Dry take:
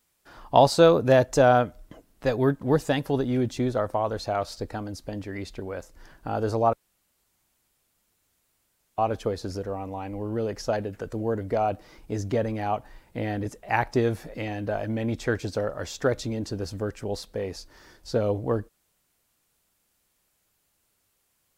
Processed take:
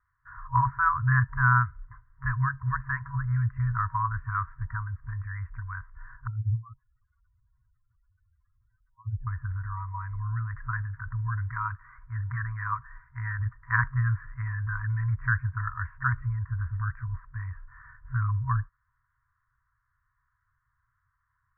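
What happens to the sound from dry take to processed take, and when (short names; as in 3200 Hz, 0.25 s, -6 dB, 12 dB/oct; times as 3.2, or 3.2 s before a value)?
6.27–9.27 spectral contrast raised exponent 3.7
11.48–13.39 tilt shelf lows -5 dB, about 830 Hz
whole clip: FFT band-reject 130–950 Hz; steep low-pass 1800 Hz 72 dB/oct; gain +6 dB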